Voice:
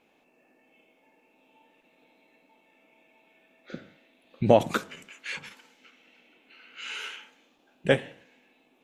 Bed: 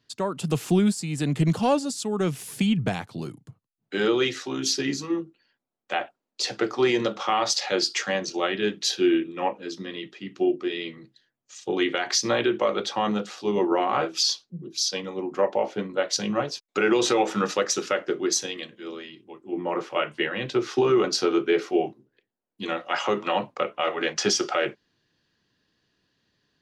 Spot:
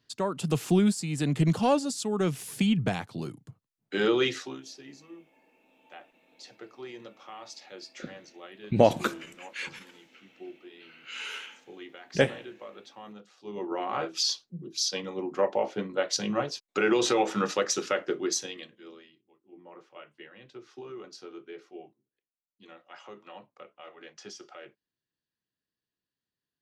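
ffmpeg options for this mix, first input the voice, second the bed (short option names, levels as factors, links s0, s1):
-filter_complex "[0:a]adelay=4300,volume=0.891[s0];[1:a]volume=6.31,afade=t=out:st=4.36:d=0.27:silence=0.112202,afade=t=in:st=13.34:d=1.06:silence=0.125893,afade=t=out:st=18.05:d=1.19:silence=0.112202[s1];[s0][s1]amix=inputs=2:normalize=0"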